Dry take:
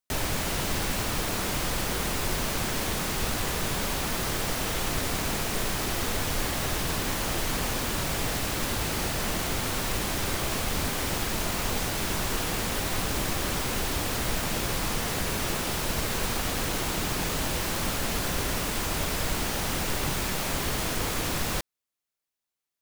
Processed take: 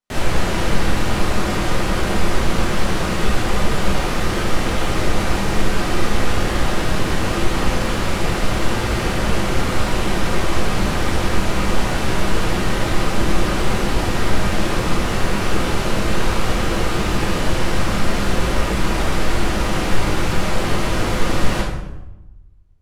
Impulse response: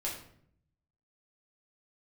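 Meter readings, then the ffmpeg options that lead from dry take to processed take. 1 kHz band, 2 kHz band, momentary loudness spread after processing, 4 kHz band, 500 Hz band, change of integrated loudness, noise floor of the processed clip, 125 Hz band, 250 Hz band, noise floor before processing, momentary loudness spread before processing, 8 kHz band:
+9.0 dB, +8.0 dB, 1 LU, +4.5 dB, +10.0 dB, +7.0 dB, -26 dBFS, +10.5 dB, +11.0 dB, under -85 dBFS, 0 LU, 0.0 dB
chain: -filter_complex "[0:a]lowpass=f=2900:p=1[s0];[1:a]atrim=start_sample=2205,asetrate=25578,aresample=44100[s1];[s0][s1]afir=irnorm=-1:irlink=0,volume=1.41"

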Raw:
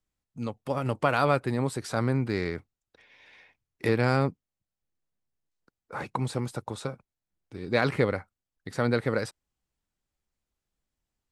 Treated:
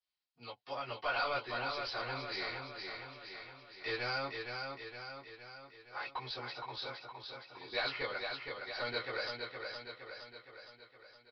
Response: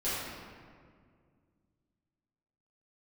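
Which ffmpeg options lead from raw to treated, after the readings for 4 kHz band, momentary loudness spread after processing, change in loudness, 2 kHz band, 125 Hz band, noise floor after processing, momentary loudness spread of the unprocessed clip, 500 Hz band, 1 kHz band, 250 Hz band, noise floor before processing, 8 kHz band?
+2.0 dB, 15 LU, -11.0 dB, -4.5 dB, -22.5 dB, -67 dBFS, 14 LU, -12.5 dB, -7.5 dB, -21.0 dB, under -85 dBFS, under -20 dB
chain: -filter_complex "[0:a]aderivative,aresample=16000,asoftclip=type=tanh:threshold=0.0168,aresample=44100,aecho=1:1:465|930|1395|1860|2325|2790|3255:0.562|0.315|0.176|0.0988|0.0553|0.031|0.0173[s0];[1:a]atrim=start_sample=2205,atrim=end_sample=3087,asetrate=83790,aresample=44100[s1];[s0][s1]afir=irnorm=-1:irlink=0,aresample=11025,aresample=44100,volume=3.16"

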